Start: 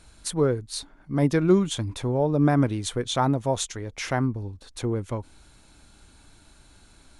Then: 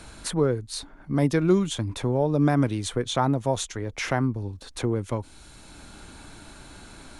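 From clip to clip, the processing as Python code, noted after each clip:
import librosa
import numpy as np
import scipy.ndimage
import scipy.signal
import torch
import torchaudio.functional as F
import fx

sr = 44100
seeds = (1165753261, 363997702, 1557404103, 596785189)

y = fx.band_squash(x, sr, depth_pct=40)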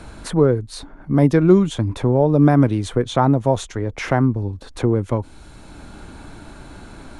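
y = fx.high_shelf(x, sr, hz=2100.0, db=-11.0)
y = y * 10.0 ** (8.0 / 20.0)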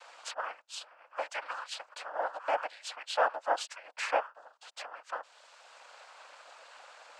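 y = scipy.signal.sosfilt(scipy.signal.cheby1(8, 1.0, 640.0, 'highpass', fs=sr, output='sos'), x)
y = fx.noise_vocoder(y, sr, seeds[0], bands=8)
y = y * 10.0 ** (-6.0 / 20.0)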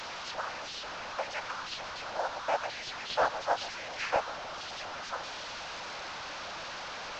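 y = fx.delta_mod(x, sr, bps=32000, step_db=-34.5)
y = y + 10.0 ** (-15.5 / 20.0) * np.pad(y, (int(136 * sr / 1000.0), 0))[:len(y)]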